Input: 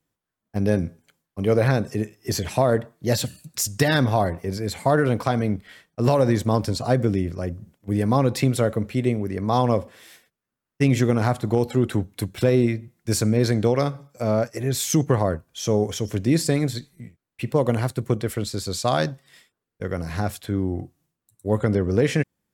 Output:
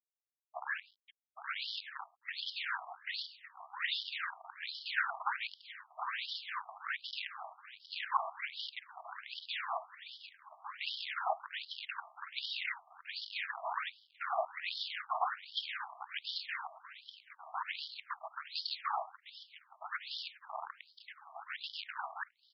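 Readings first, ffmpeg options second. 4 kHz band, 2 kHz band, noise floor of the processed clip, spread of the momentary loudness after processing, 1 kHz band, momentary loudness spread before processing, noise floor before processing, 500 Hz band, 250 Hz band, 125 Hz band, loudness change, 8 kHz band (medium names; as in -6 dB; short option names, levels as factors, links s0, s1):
-5.5 dB, -6.0 dB, -75 dBFS, 15 LU, -10.0 dB, 9 LU, -85 dBFS, -27.5 dB, under -40 dB, under -40 dB, -17.0 dB, under -35 dB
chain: -filter_complex "[0:a]highpass=260,deesser=0.9,tiltshelf=f=1200:g=-6.5,aecho=1:1:6.6:0.87,asplit=2[s0][s1];[s1]acompressor=threshold=0.0282:ratio=6,volume=0.708[s2];[s0][s2]amix=inputs=2:normalize=0,aeval=exprs='(tanh(7.08*val(0)+0.4)-tanh(0.4))/7.08':c=same,afreqshift=22,afftfilt=real='hypot(re,im)*cos(2*PI*random(0))':imag='hypot(re,im)*sin(2*PI*random(1))':win_size=512:overlap=0.75,acrusher=bits=6:dc=4:mix=0:aa=0.000001,asplit=2[s3][s4];[s4]aecho=0:1:1159|2318:0.282|0.0507[s5];[s3][s5]amix=inputs=2:normalize=0,aresample=11025,aresample=44100,afftfilt=real='re*between(b*sr/1024,870*pow(4200/870,0.5+0.5*sin(2*PI*1.3*pts/sr))/1.41,870*pow(4200/870,0.5+0.5*sin(2*PI*1.3*pts/sr))*1.41)':imag='im*between(b*sr/1024,870*pow(4200/870,0.5+0.5*sin(2*PI*1.3*pts/sr))/1.41,870*pow(4200/870,0.5+0.5*sin(2*PI*1.3*pts/sr))*1.41)':win_size=1024:overlap=0.75,volume=1.33"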